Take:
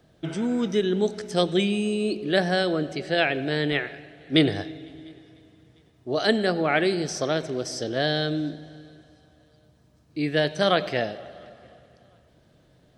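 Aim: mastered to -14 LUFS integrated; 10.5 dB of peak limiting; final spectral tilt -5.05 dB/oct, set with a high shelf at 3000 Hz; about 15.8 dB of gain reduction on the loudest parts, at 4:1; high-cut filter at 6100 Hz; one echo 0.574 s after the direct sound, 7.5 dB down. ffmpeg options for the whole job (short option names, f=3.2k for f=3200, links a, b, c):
-af "lowpass=6.1k,highshelf=f=3k:g=-6,acompressor=threshold=-35dB:ratio=4,alimiter=level_in=7.5dB:limit=-24dB:level=0:latency=1,volume=-7.5dB,aecho=1:1:574:0.422,volume=27dB"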